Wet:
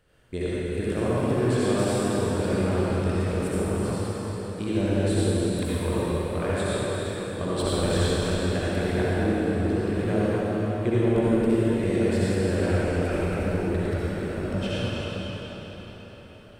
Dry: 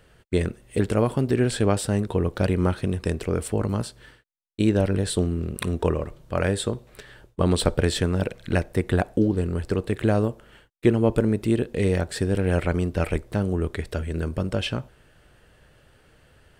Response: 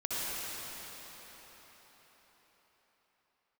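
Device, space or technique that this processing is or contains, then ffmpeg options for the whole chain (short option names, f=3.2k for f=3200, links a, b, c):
cathedral: -filter_complex "[1:a]atrim=start_sample=2205[a];[0:a][a]afir=irnorm=-1:irlink=0,volume=-7.5dB"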